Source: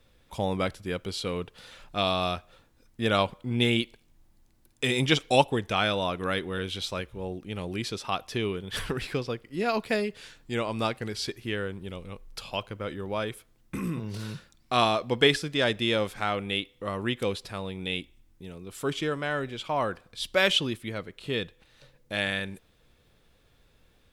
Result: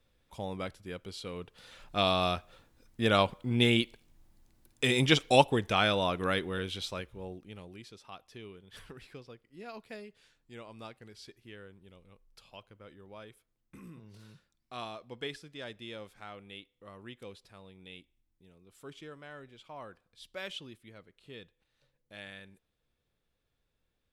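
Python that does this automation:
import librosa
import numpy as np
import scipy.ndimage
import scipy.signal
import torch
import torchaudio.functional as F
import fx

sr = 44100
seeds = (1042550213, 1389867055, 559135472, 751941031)

y = fx.gain(x, sr, db=fx.line((1.32, -9.5), (1.99, -1.0), (6.28, -1.0), (7.33, -8.0), (7.86, -18.0)))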